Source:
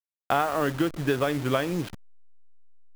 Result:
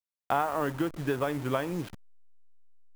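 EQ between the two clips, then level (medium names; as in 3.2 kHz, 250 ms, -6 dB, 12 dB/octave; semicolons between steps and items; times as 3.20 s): dynamic bell 930 Hz, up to +6 dB, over -43 dBFS, Q 3.7; dynamic bell 4.1 kHz, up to -5 dB, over -43 dBFS, Q 0.84; -4.5 dB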